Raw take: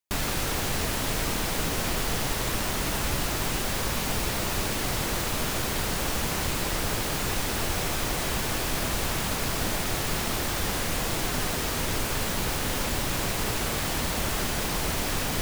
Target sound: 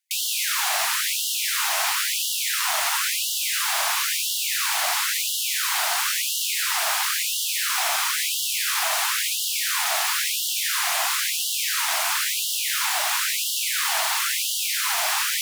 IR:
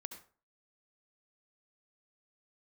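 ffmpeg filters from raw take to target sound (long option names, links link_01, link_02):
-filter_complex "[0:a]asplit=2[link_01][link_02];[1:a]atrim=start_sample=2205,asetrate=27783,aresample=44100[link_03];[link_02][link_03]afir=irnorm=-1:irlink=0,volume=5.5dB[link_04];[link_01][link_04]amix=inputs=2:normalize=0,afftfilt=real='re*gte(b*sr/1024,600*pow(2800/600,0.5+0.5*sin(2*PI*0.98*pts/sr)))':imag='im*gte(b*sr/1024,600*pow(2800/600,0.5+0.5*sin(2*PI*0.98*pts/sr)))':win_size=1024:overlap=0.75"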